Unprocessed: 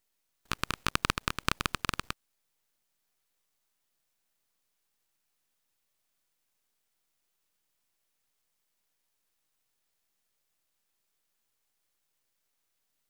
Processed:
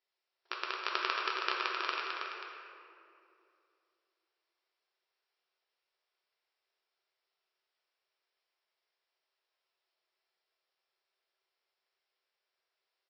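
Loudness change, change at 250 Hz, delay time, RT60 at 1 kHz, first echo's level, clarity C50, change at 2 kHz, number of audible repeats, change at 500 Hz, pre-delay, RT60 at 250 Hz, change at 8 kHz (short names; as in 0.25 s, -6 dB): -2.5 dB, -12.0 dB, 0.322 s, 2.4 s, -6.0 dB, -1.0 dB, -0.5 dB, 1, 0.0 dB, 3 ms, 3.5 s, under -15 dB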